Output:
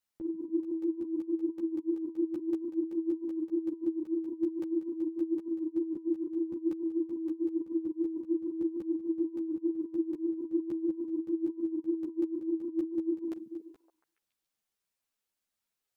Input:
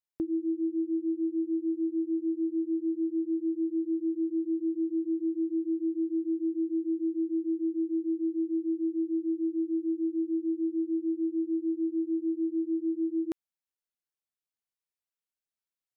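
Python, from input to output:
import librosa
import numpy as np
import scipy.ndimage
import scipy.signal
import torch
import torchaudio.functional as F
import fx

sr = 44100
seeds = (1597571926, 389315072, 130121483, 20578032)

y = fx.over_compress(x, sr, threshold_db=-35.0, ratio=-0.5)
y = fx.echo_stepped(y, sr, ms=141, hz=180.0, octaves=0.7, feedback_pct=70, wet_db=-5.5)
y = fx.buffer_crackle(y, sr, first_s=0.63, period_s=0.19, block=128, kind='repeat')
y = fx.ensemble(y, sr)
y = y * librosa.db_to_amplitude(3.5)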